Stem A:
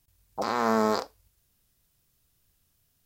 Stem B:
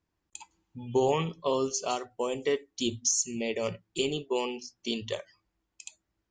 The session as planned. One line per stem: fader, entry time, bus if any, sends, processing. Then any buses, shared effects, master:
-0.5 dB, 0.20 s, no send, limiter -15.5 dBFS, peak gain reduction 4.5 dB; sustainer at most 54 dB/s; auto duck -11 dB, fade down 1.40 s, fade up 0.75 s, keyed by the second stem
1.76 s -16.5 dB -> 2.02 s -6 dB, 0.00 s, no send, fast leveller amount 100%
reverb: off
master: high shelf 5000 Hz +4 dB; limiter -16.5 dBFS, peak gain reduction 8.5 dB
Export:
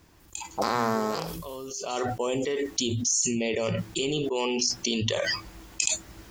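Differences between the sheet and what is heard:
stem A -0.5 dB -> +7.5 dB; master: missing limiter -16.5 dBFS, peak gain reduction 8.5 dB

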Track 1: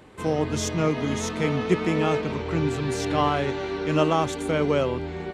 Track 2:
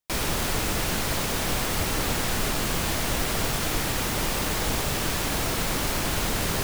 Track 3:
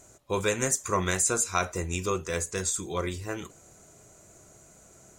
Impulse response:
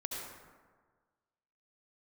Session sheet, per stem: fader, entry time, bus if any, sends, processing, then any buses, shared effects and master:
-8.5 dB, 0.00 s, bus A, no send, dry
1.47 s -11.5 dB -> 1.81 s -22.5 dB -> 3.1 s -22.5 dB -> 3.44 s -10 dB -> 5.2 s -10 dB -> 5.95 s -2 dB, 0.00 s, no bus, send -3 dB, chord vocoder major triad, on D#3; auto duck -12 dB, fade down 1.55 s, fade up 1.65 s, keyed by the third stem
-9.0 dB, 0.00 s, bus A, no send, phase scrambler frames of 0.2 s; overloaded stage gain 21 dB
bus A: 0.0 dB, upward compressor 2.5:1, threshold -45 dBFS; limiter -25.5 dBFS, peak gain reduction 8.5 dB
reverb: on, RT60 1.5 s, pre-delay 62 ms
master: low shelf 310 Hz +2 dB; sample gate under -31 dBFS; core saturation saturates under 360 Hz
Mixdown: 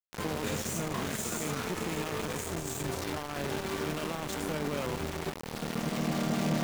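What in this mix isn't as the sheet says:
stem 1 -8.5 dB -> -1.5 dB; stem 3 -9.0 dB -> -1.5 dB

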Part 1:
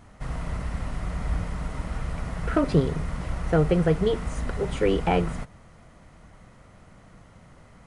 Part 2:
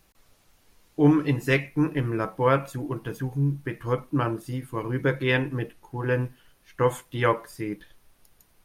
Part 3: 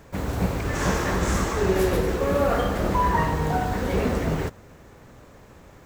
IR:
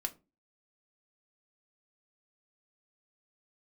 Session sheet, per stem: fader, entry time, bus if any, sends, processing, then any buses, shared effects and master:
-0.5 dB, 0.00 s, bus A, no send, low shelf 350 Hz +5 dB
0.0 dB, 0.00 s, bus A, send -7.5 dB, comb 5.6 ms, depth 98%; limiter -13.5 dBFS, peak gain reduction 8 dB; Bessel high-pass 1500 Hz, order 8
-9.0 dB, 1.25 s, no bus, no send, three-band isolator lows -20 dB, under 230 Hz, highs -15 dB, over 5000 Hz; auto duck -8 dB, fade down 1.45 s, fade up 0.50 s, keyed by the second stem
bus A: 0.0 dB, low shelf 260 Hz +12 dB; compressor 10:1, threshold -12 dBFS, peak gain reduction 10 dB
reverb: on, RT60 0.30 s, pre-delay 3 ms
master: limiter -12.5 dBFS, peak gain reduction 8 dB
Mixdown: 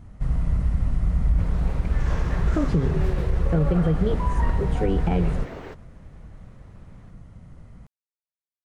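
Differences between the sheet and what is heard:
stem 1 -0.5 dB -> -7.0 dB; stem 2: muted; reverb: off

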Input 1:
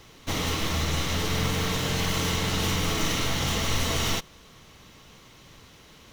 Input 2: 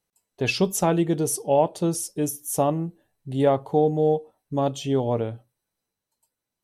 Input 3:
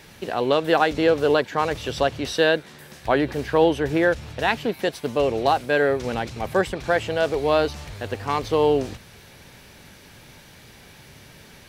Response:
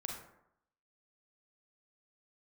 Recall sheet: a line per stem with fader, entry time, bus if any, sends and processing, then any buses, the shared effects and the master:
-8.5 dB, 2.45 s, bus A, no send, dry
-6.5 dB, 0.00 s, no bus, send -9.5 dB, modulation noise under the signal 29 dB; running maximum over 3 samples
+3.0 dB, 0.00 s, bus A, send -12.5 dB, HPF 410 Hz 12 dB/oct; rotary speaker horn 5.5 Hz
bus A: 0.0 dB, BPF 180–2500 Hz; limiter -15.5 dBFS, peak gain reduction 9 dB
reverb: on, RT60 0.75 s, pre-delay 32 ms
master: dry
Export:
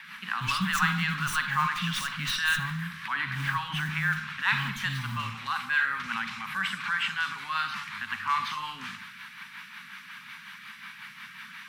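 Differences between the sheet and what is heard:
stem 1 -8.5 dB -> -17.0 dB; stem 3 +3.0 dB -> +12.5 dB; master: extra elliptic band-stop 200–1100 Hz, stop band 40 dB

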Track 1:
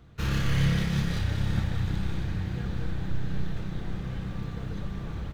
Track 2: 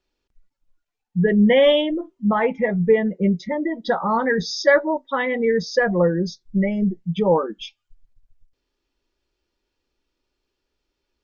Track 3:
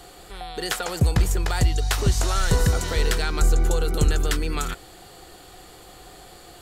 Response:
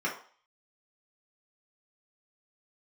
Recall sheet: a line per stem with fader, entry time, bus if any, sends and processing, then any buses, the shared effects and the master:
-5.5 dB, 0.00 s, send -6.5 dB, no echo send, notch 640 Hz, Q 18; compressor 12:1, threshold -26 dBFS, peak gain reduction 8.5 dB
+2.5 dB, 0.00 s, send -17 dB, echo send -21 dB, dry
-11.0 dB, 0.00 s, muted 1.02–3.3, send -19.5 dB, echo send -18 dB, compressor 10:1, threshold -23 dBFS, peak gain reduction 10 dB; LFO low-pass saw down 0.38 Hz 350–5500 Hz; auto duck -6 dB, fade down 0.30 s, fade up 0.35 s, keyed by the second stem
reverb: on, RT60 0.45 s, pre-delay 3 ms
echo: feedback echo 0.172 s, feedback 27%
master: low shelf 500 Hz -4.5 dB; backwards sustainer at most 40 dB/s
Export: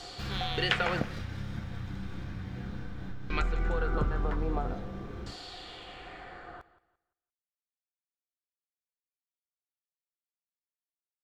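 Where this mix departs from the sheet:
stem 2: muted; stem 3 -11.0 dB -> +0.5 dB; master: missing backwards sustainer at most 40 dB/s

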